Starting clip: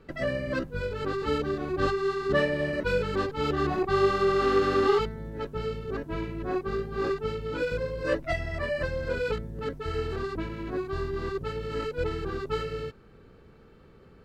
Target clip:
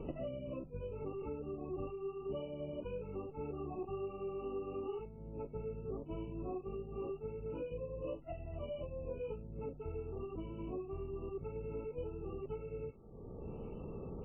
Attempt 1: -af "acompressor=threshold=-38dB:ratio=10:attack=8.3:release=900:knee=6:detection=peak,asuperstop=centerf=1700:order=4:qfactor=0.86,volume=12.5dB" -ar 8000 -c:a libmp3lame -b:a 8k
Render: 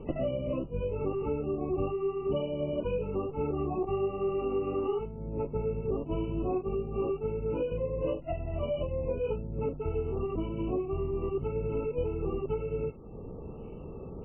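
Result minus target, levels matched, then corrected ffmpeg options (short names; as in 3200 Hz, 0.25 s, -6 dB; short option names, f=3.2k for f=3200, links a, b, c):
compressor: peak gain reduction -11 dB
-af "acompressor=threshold=-50dB:ratio=10:attack=8.3:release=900:knee=6:detection=peak,asuperstop=centerf=1700:order=4:qfactor=0.86,volume=12.5dB" -ar 8000 -c:a libmp3lame -b:a 8k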